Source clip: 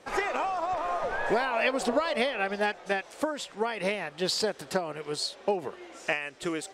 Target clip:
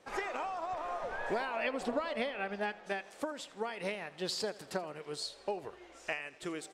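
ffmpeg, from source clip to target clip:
-filter_complex "[0:a]asettb=1/sr,asplit=3[s0][s1][s2];[s0]atrim=end=1.564[s3];[s1]atrim=start=1.56:end=2.84,asetpts=PTS-STARTPTS,afade=t=in:d=0.004:c=qsin,afade=t=out:st=1.276:d=0.004:c=qsin,bass=f=250:g=3,treble=f=4000:g=-6[s4];[s2]atrim=start=2.836[s5];[s3][s4]acrossfade=d=0.004:c1=hsin:c2=qsin[s6];[s6][s5]acrossfade=d=0.004:c1=qsin:c2=hsin,aecho=1:1:81|162|243|324|405:0.106|0.0604|0.0344|0.0196|0.0112,asplit=3[s7][s8][s9];[s7]afade=t=out:st=5.22:d=0.02[s10];[s8]asubboost=boost=7.5:cutoff=65,afade=t=in:st=5.22:d=0.02,afade=t=out:st=6.19:d=0.02[s11];[s9]afade=t=in:st=6.19:d=0.02[s12];[s10][s11][s12]amix=inputs=3:normalize=0,volume=0.398"

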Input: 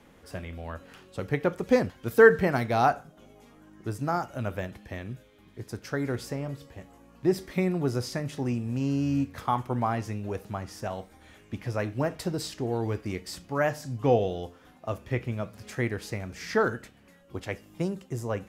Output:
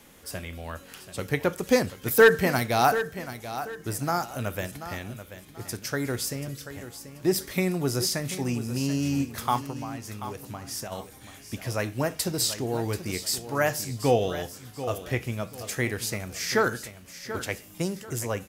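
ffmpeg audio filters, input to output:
-filter_complex "[0:a]asettb=1/sr,asplit=3[s0][s1][s2];[s0]atrim=end=6.284[s3];[s1]atrim=start=6.28:end=6.7,asetpts=PTS-STARTPTS,afade=t=in:d=0.004:c=qsin,afade=t=out:st=0.416:d=0.004:c=qsin,equalizer=f=890:w=1.2:g=-9.5[s4];[s2]atrim=start=6.696[s5];[s3][s4]acrossfade=d=0.004:c1=hsin:c2=qsin[s6];[s6][s5]acrossfade=d=0.004:c1=qsin:c2=hsin,asettb=1/sr,asplit=3[s7][s8][s9];[s7]atrim=end=9.584[s10];[s8]atrim=start=9.58:end=10.92,asetpts=PTS-STARTPTS,afade=t=in:d=0.004:c=qsin,afade=t=out:st=1.336:d=0.004:c=qsin,acompressor=threshold=0.0178:ratio=6[s11];[s9]atrim=start=10.916[s12];[s10][s11]acrossfade=d=0.004:c1=hsin:c2=qsin[s13];[s13][s12]acrossfade=d=0.004:c1=qsin:c2=hsin,crystalizer=i=4:c=0,asoftclip=type=hard:threshold=0.355,aecho=1:1:735|1470|2205:0.251|0.0728|0.0211"

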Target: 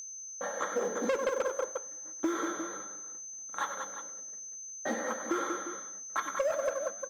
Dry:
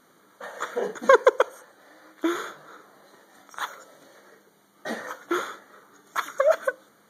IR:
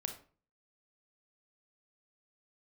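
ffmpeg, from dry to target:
-filter_complex "[0:a]agate=range=0.0562:threshold=0.00355:ratio=16:detection=peak,equalizer=f=4400:w=0.35:g=-7.5,aecho=1:1:3.7:0.44,asplit=2[s0][s1];[s1]acompressor=threshold=0.0251:ratio=6,volume=1.41[s2];[s0][s2]amix=inputs=2:normalize=0,aecho=1:1:95|189|354:0.224|0.355|0.2,acrusher=bits=6:mode=log:mix=0:aa=0.000001,aeval=exprs='val(0)+0.0282*sin(2*PI*6200*n/s)':c=same,asoftclip=type=tanh:threshold=0.2,flanger=delay=7.9:depth=7.9:regen=-85:speed=0.56:shape=triangular,acrossover=split=180|5200[s3][s4][s5];[s3]acompressor=threshold=0.001:ratio=4[s6];[s4]acompressor=threshold=0.0447:ratio=4[s7];[s5]acompressor=threshold=0.00224:ratio=4[s8];[s6][s7][s8]amix=inputs=3:normalize=0"

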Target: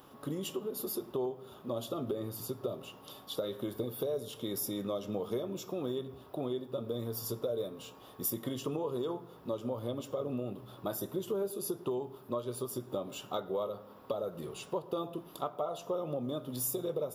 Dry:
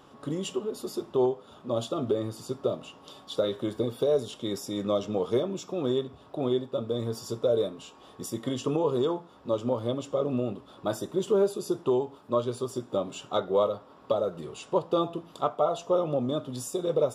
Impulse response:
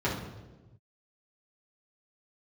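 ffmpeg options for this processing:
-filter_complex "[0:a]acompressor=threshold=0.0282:ratio=3,aexciter=amount=10.5:drive=4.4:freq=11000,asplit=2[s0][s1];[1:a]atrim=start_sample=2205,adelay=100[s2];[s1][s2]afir=irnorm=-1:irlink=0,volume=0.0266[s3];[s0][s3]amix=inputs=2:normalize=0,volume=0.75"

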